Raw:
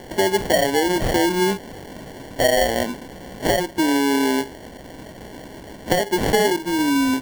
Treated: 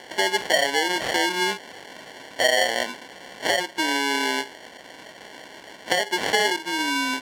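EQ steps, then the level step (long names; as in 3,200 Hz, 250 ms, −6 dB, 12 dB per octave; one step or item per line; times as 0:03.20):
resonant band-pass 2,700 Hz, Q 0.56
+3.5 dB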